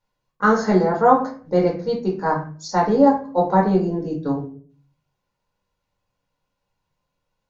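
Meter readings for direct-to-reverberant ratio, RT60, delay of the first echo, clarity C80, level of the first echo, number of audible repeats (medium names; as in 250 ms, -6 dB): -3.0 dB, 0.40 s, no echo, 13.5 dB, no echo, no echo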